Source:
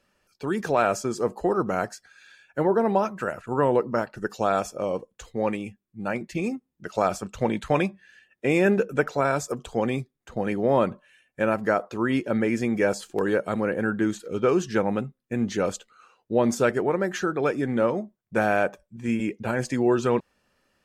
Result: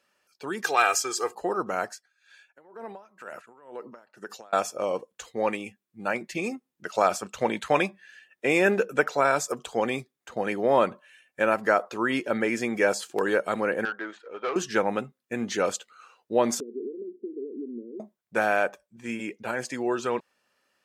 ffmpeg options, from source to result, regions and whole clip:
ffmpeg -i in.wav -filter_complex "[0:a]asettb=1/sr,asplit=3[link_01][link_02][link_03];[link_01]atrim=end=0.644[link_04];[link_02]atrim=start=0.64:end=1.35,asetpts=PTS-STARTPTS,afade=type=in:duration=0.004:curve=qsin,afade=type=out:start_time=0.706:duration=0.004:curve=qsin,tiltshelf=frequency=800:gain=-7.5,aecho=1:1:2.5:0.75,atrim=end_sample=31311[link_05];[link_03]atrim=start=1.346[link_06];[link_04][link_05]acrossfade=duration=0.004:curve1=hsin:curve2=qsin[link_07];[link_07][link_06]acrossfade=duration=0.004:curve1=qsin:curve2=hsin,asettb=1/sr,asplit=3[link_08][link_09][link_10];[link_08]atrim=end=1.914[link_11];[link_09]atrim=start=1.91:end=4.53,asetpts=PTS-STARTPTS,afade=type=in:duration=0.004:curve=qsin,afade=type=out:start_time=2.616:duration=0.004:curve=qsin,highpass=150,acompressor=threshold=-29dB:ratio=12:attack=3.2:release=140:knee=1:detection=peak,aeval=exprs='val(0)*pow(10,-19*(0.5-0.5*cos(2*PI*2.1*n/s))/20)':channel_layout=same[link_12];[link_10]atrim=start=4.526[link_13];[link_11][link_12]acrossfade=duration=0.004:curve1=hsin:curve2=qsin[link_14];[link_14][link_13]acrossfade=duration=0.004:curve1=qsin:curve2=hsin,asettb=1/sr,asplit=3[link_15][link_16][link_17];[link_15]atrim=end=13.854[link_18];[link_16]atrim=start=13.85:end=14.56,asetpts=PTS-STARTPTS,afade=type=in:duration=0.004:curve=qsin,afade=type=out:start_time=0.706:duration=0.004:curve=qsin,highpass=580,lowpass=2000,aeval=exprs='(tanh(15.8*val(0)+0.3)-tanh(0.3))/15.8':channel_layout=same[link_19];[link_17]atrim=start=14.556[link_20];[link_18][link_19]acrossfade=duration=0.004:curve1=hsin:curve2=qsin[link_21];[link_21][link_20]acrossfade=duration=0.004:curve1=qsin:curve2=hsin,asettb=1/sr,asplit=3[link_22][link_23][link_24];[link_22]atrim=end=16.604[link_25];[link_23]atrim=start=16.6:end=18,asetpts=PTS-STARTPTS,afade=type=in:duration=0.004:curve=qsin,afade=type=out:start_time=1.396:duration=0.004:curve=qsin,acompressor=threshold=-25dB:ratio=10:attack=3.2:release=140:knee=1:detection=peak,asuperpass=centerf=310:order=12:qfactor=1.4[link_26];[link_24]atrim=start=17.996[link_27];[link_25][link_26]acrossfade=duration=0.004:curve1=hsin:curve2=qsin[link_28];[link_28][link_27]acrossfade=duration=0.004:curve1=qsin:curve2=hsin,dynaudnorm=framelen=370:gausssize=17:maxgain=4dB,highpass=frequency=620:poles=1" out.wav

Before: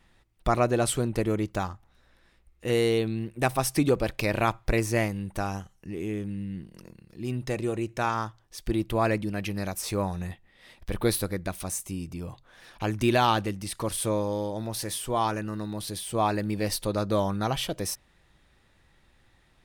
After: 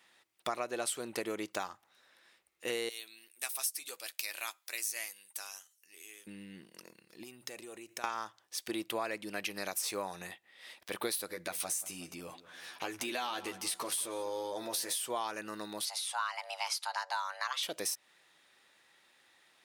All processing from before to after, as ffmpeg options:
ffmpeg -i in.wav -filter_complex "[0:a]asettb=1/sr,asplit=3[link_01][link_02][link_03];[link_01]atrim=end=2.894[link_04];[link_02]atrim=start=2.89:end=6.27,asetpts=PTS-STARTPTS,afade=type=in:duration=0.004:curve=qsin,afade=type=out:start_time=3.376:duration=0.004:curve=qsin,aderivative,asplit=2[link_05][link_06];[link_06]adelay=12,volume=-10.5dB[link_07];[link_05][link_07]amix=inputs=2:normalize=0,atrim=end_sample=149058[link_08];[link_03]atrim=start=6.266[link_09];[link_04][link_08]acrossfade=duration=0.004:curve1=hsin:curve2=qsin[link_10];[link_10][link_09]acrossfade=duration=0.004:curve1=qsin:curve2=hsin,asettb=1/sr,asplit=3[link_11][link_12][link_13];[link_11]atrim=end=7.234[link_14];[link_12]atrim=start=7.23:end=8.04,asetpts=PTS-STARTPTS,afade=type=in:duration=0.004:curve=qsin,afade=type=out:start_time=0.806:duration=0.004:curve=qsin,highshelf=frequency=9800:gain=11.5,acompressor=threshold=-37dB:ratio=12:attack=3.2:release=140:knee=1:detection=peak[link_15];[link_13]atrim=start=8.036[link_16];[link_14][link_15]acrossfade=duration=0.004:curve1=hsin:curve2=qsin[link_17];[link_17][link_16]acrossfade=duration=0.004:curve1=qsin:curve2=hsin,asettb=1/sr,asplit=3[link_18][link_19][link_20];[link_18]atrim=end=11.284[link_21];[link_19]atrim=start=11.28:end=14.95,asetpts=PTS-STARTPTS,afade=type=in:duration=0.004:curve=qsin,afade=type=out:start_time=3.666:duration=0.004:curve=qsin,asplit=2[link_22][link_23];[link_23]adelay=12,volume=-3.5dB[link_24];[link_22][link_24]amix=inputs=2:normalize=0,atrim=end_sample=161847,acompressor=threshold=-28dB:ratio=6:attack=3.2:release=140:knee=1:detection=peak,asplit=2[link_25][link_26];[link_26]adelay=183,lowpass=frequency=2900:poles=1,volume=-16dB,asplit=2[link_27][link_28];[link_28]adelay=183,lowpass=frequency=2900:poles=1,volume=0.54,asplit=2[link_29][link_30];[link_30]adelay=183,lowpass=frequency=2900:poles=1,volume=0.54,asplit=2[link_31][link_32];[link_32]adelay=183,lowpass=frequency=2900:poles=1,volume=0.54,asplit=2[link_33][link_34];[link_34]adelay=183,lowpass=frequency=2900:poles=1,volume=0.54[link_35];[link_25][link_27][link_29][link_31][link_33][link_35]amix=inputs=6:normalize=0,atrim=end_sample=161847[link_36];[link_20]atrim=start=14.946[link_37];[link_21][link_36]acrossfade=duration=0.004:curve1=hsin:curve2=qsin[link_38];[link_38][link_37]acrossfade=duration=0.004:curve1=qsin:curve2=hsin,asettb=1/sr,asplit=3[link_39][link_40][link_41];[link_39]atrim=end=15.854[link_42];[link_40]atrim=start=15.85:end=17.63,asetpts=PTS-STARTPTS,afade=type=in:duration=0.004:curve=qsin,afade=type=out:start_time=1.776:duration=0.004:curve=qsin,highpass=540,lowpass=7600,afreqshift=370[link_43];[link_41]atrim=start=17.626[link_44];[link_42][link_43]acrossfade=duration=0.004:curve1=hsin:curve2=qsin[link_45];[link_45][link_44]acrossfade=duration=0.004:curve1=qsin:curve2=hsin,highpass=370,tiltshelf=frequency=1400:gain=-4,acompressor=threshold=-32dB:ratio=6" out.wav

